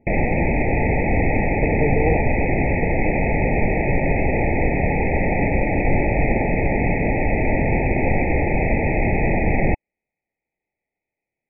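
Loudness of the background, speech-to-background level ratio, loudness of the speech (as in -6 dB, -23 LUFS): -20.5 LUFS, -4.5 dB, -25.0 LUFS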